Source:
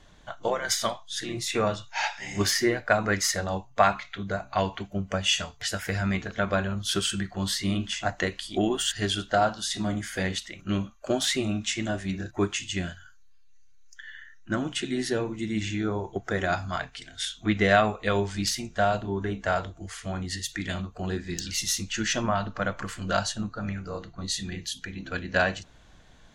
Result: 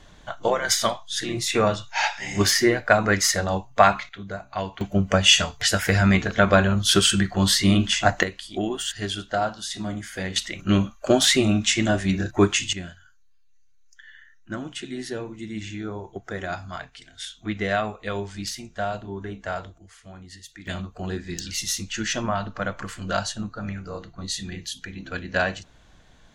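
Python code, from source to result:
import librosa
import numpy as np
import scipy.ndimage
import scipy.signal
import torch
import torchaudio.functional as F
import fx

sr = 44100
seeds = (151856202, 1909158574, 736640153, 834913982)

y = fx.gain(x, sr, db=fx.steps((0.0, 5.0), (4.09, -3.0), (4.81, 9.0), (8.23, -1.5), (10.36, 8.0), (12.73, -4.0), (19.78, -11.0), (20.67, 0.5)))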